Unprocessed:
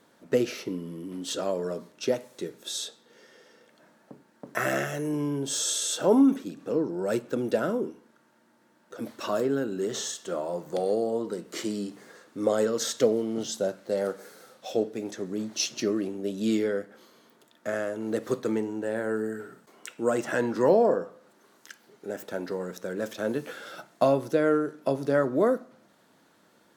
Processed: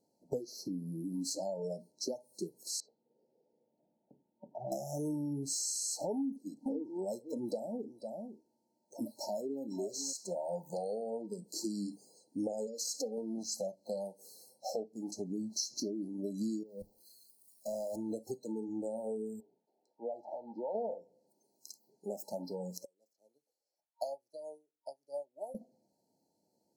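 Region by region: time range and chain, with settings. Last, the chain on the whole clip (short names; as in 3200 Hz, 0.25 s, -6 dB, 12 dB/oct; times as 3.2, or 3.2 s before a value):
2.8–4.72 compressor 2.5:1, threshold -32 dBFS + tape spacing loss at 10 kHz 44 dB
6.16–10.13 bell 170 Hz -6 dB 0.31 oct + echo 0.499 s -11.5 dB
12.67–13.18 low shelf 320 Hz -6.5 dB + compressor, threshold -30 dBFS + comb 3.9 ms, depth 79%
16.63–17.96 zero-crossing step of -34 dBFS + level quantiser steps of 17 dB + three-band expander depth 100%
19.4–20.75 HPF 760 Hz 6 dB/oct + air absorption 380 m
22.85–25.55 HPF 1500 Hz 6 dB/oct + upward expander 2.5:1, over -41 dBFS
whole clip: compressor 12:1, threshold -33 dBFS; FFT band-reject 930–4000 Hz; spectral noise reduction 16 dB; gain +1 dB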